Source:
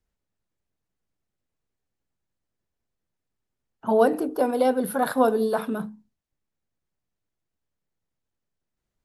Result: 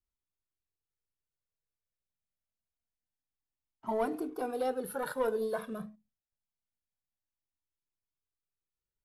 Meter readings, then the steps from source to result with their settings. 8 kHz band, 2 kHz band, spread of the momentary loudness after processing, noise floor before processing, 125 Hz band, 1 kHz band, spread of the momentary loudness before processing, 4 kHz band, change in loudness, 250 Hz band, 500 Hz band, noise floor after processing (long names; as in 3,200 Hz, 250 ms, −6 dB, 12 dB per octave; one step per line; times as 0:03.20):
−9.5 dB, −10.0 dB, 11 LU, −84 dBFS, can't be measured, −11.5 dB, 11 LU, −10.5 dB, −11.5 dB, −13.0 dB, −11.0 dB, below −85 dBFS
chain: leveller curve on the samples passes 1
flanger whose copies keep moving one way rising 0.26 Hz
level −9 dB